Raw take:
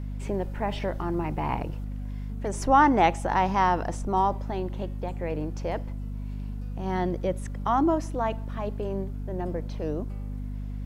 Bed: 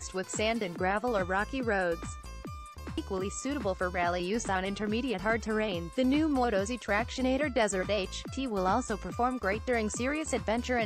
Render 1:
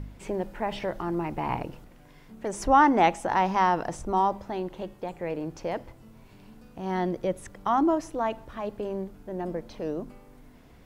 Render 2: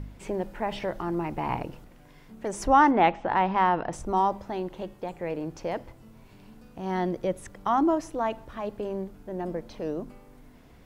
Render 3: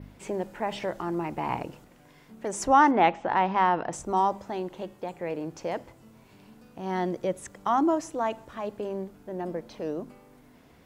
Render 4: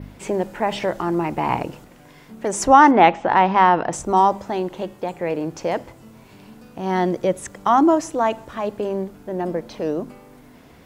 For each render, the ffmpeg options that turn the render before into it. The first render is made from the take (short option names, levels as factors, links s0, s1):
-af "bandreject=f=50:t=h:w=4,bandreject=f=100:t=h:w=4,bandreject=f=150:t=h:w=4,bandreject=f=200:t=h:w=4,bandreject=f=250:t=h:w=4"
-filter_complex "[0:a]asettb=1/sr,asplit=3[s0][s1][s2];[s0]atrim=end=2.914[s3];[s1]atrim=start=2.91:end=3.93,asetpts=PTS-STARTPTS,afade=t=in:d=0.004:c=qsin,afade=t=out:st=1.016:d=0.004:c=qsin,lowpass=f=3700:w=0.5412,lowpass=f=3700:w=1.3066[s4];[s2]atrim=start=3.926[s5];[s3][s4]acrossfade=d=0.004:c1=hsin:c2=qsin[s6];[s6][s5]acrossfade=d=0.004:c1=qsin:c2=hsin"
-af "highpass=f=140:p=1,adynamicequalizer=threshold=0.00126:dfrequency=7300:dqfactor=2.2:tfrequency=7300:tqfactor=2.2:attack=5:release=100:ratio=0.375:range=3.5:mode=boostabove:tftype=bell"
-af "volume=2.66,alimiter=limit=0.891:level=0:latency=1"